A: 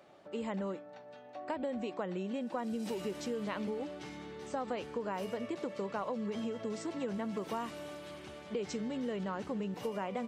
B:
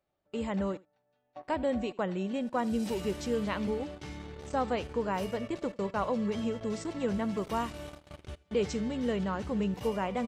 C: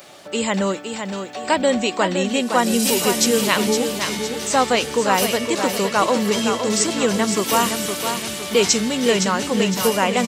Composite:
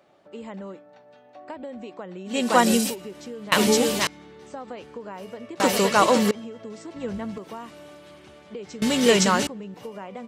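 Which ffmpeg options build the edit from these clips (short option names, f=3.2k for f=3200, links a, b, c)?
-filter_complex "[2:a]asplit=4[a][b][c][d];[0:a]asplit=6[e][f][g][h][i][j];[e]atrim=end=2.49[k];[a]atrim=start=2.25:end=2.96[l];[f]atrim=start=2.72:end=3.522[m];[b]atrim=start=3.518:end=4.072[n];[g]atrim=start=4.068:end=5.602[o];[c]atrim=start=5.598:end=6.312[p];[h]atrim=start=6.308:end=6.962[q];[1:a]atrim=start=6.958:end=7.382[r];[i]atrim=start=7.378:end=8.822[s];[d]atrim=start=8.818:end=9.472[t];[j]atrim=start=9.468[u];[k][l]acrossfade=d=0.24:c1=tri:c2=tri[v];[v][m]acrossfade=d=0.24:c1=tri:c2=tri[w];[w][n]acrossfade=d=0.004:c1=hsin:c2=hsin[x];[x][o]acrossfade=d=0.004:c1=hsin:c2=hsin[y];[y][p]acrossfade=d=0.004:c1=hsin:c2=hsin[z];[z][q]acrossfade=d=0.004:c1=hsin:c2=hsin[aa];[aa][r]acrossfade=d=0.004:c1=hsin:c2=hsin[ab];[ab][s]acrossfade=d=0.004:c1=hsin:c2=hsin[ac];[ac][t]acrossfade=d=0.004:c1=hsin:c2=hsin[ad];[ad][u]acrossfade=d=0.004:c1=hsin:c2=hsin"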